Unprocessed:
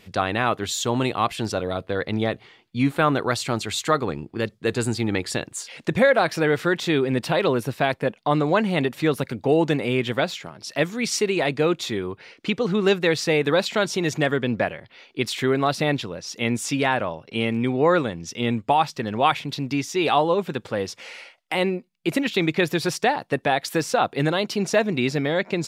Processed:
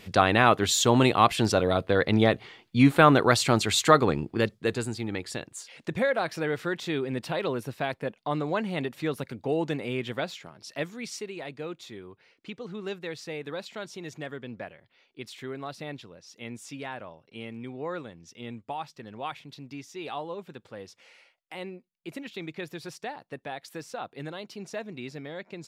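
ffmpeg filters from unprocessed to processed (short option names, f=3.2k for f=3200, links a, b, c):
-af "volume=2.5dB,afade=t=out:st=4.24:d=0.63:silence=0.281838,afade=t=out:st=10.64:d=0.66:silence=0.421697"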